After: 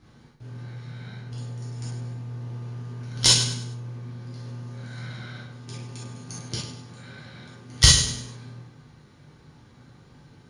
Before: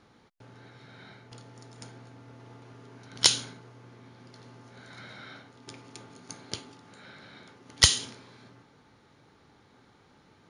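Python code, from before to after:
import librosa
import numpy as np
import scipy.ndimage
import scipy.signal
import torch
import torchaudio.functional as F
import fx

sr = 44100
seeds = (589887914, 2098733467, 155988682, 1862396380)

p1 = fx.bass_treble(x, sr, bass_db=13, treble_db=4)
p2 = p1 + fx.echo_feedback(p1, sr, ms=100, feedback_pct=36, wet_db=-10.0, dry=0)
p3 = fx.rev_gated(p2, sr, seeds[0], gate_ms=90, shape='flat', drr_db=-6.5)
y = F.gain(torch.from_numpy(p3), -5.0).numpy()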